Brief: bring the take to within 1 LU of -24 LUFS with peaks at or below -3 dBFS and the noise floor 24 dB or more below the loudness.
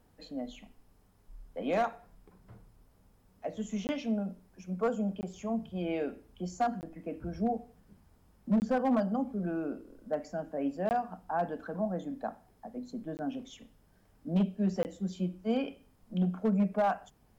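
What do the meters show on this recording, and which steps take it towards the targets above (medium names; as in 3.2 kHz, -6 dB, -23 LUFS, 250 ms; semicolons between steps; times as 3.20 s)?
clipped samples 0.6%; clipping level -22.0 dBFS; dropouts 7; longest dropout 19 ms; loudness -34.0 LUFS; peak level -22.0 dBFS; loudness target -24.0 LUFS
-> clip repair -22 dBFS; interpolate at 3.87/5.21/6.81/8.60/10.89/13.17/14.83 s, 19 ms; trim +10 dB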